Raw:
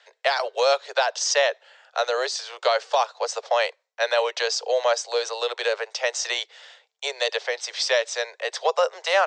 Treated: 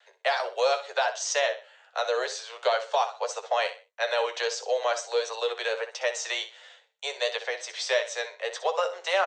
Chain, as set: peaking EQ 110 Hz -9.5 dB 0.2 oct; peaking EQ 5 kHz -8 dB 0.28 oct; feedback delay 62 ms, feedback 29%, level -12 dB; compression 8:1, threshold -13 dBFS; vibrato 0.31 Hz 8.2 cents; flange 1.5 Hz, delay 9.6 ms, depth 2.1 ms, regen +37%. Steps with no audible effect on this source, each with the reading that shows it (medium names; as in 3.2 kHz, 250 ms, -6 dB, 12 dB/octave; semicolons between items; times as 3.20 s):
peaking EQ 110 Hz: input has nothing below 340 Hz